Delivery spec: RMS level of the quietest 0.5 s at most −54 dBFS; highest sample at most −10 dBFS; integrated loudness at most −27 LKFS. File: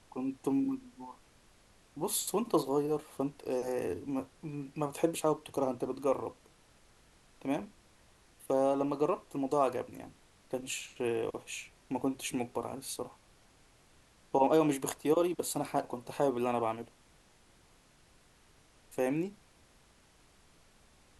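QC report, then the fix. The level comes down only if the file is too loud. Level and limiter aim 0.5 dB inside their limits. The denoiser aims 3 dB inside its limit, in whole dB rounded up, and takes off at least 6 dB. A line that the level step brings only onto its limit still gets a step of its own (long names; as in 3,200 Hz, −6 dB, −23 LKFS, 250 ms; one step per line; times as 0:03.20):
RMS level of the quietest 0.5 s −64 dBFS: in spec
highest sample −15.0 dBFS: in spec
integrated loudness −34.0 LKFS: in spec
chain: no processing needed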